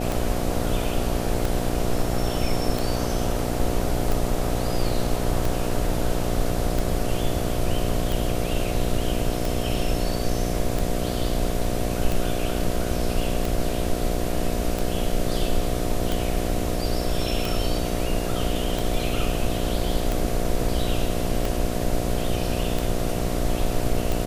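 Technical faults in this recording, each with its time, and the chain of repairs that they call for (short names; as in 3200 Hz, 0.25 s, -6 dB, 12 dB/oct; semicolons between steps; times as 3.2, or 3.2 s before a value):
buzz 60 Hz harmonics 12 -28 dBFS
tick 45 rpm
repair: de-click; de-hum 60 Hz, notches 12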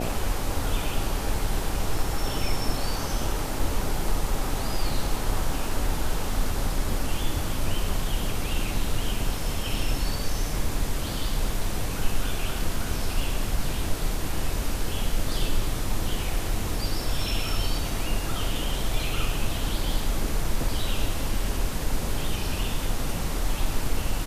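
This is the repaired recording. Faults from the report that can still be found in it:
none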